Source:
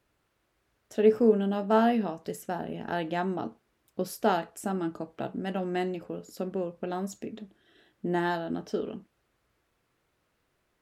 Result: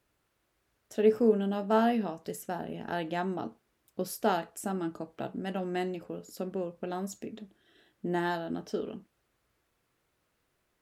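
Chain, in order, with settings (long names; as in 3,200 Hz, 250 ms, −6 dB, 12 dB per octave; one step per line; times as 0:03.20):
high-shelf EQ 5,900 Hz +5 dB
level −2.5 dB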